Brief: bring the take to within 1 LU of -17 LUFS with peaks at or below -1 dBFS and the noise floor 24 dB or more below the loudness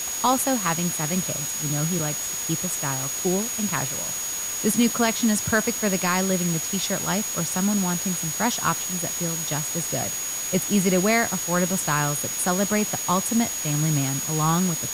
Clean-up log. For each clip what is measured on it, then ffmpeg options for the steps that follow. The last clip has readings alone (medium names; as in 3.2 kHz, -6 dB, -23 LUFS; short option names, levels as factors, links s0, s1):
steady tone 6.7 kHz; tone level -28 dBFS; noise floor -29 dBFS; noise floor target -47 dBFS; loudness -23.0 LUFS; peak level -7.5 dBFS; loudness target -17.0 LUFS
-> -af "bandreject=f=6700:w=30"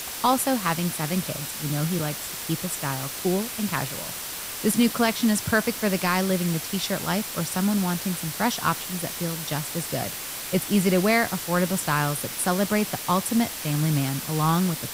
steady tone not found; noise floor -34 dBFS; noise floor target -49 dBFS
-> -af "afftdn=nr=15:nf=-34"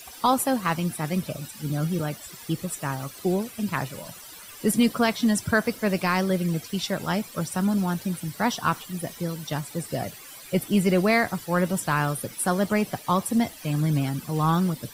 noise floor -44 dBFS; noise floor target -50 dBFS
-> -af "afftdn=nr=6:nf=-44"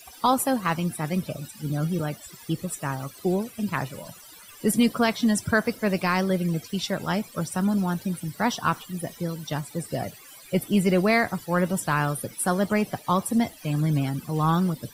noise floor -47 dBFS; noise floor target -50 dBFS
-> -af "afftdn=nr=6:nf=-47"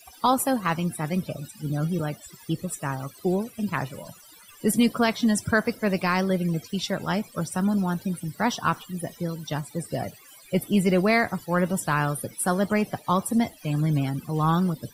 noise floor -51 dBFS; loudness -26.0 LUFS; peak level -9.0 dBFS; loudness target -17.0 LUFS
-> -af "volume=2.82,alimiter=limit=0.891:level=0:latency=1"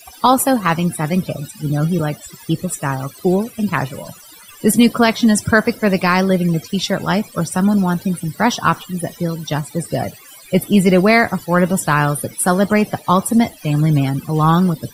loudness -17.0 LUFS; peak level -1.0 dBFS; noise floor -42 dBFS